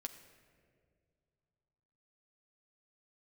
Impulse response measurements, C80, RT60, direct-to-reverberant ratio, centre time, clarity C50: 11.0 dB, 2.1 s, 5.0 dB, 18 ms, 10.5 dB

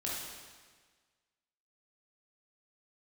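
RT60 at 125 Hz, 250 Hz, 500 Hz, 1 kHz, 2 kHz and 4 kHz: 1.5 s, 1.5 s, 1.5 s, 1.5 s, 1.5 s, 1.4 s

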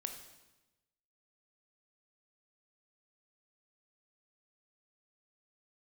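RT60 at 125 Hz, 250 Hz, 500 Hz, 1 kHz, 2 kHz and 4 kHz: 1.3 s, 1.2 s, 1.1 s, 1.0 s, 1.0 s, 0.95 s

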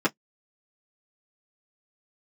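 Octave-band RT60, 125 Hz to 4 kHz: 0.15 s, 0.10 s, 0.10 s, 0.10 s, 0.10 s, 0.10 s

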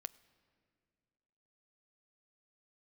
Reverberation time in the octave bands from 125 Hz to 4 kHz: 2.2 s, 2.2 s, 2.4 s, 2.0 s, 2.0 s, 1.7 s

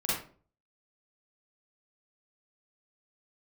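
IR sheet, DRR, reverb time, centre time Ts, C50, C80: -9.0 dB, 0.45 s, 60 ms, -1.5 dB, 5.5 dB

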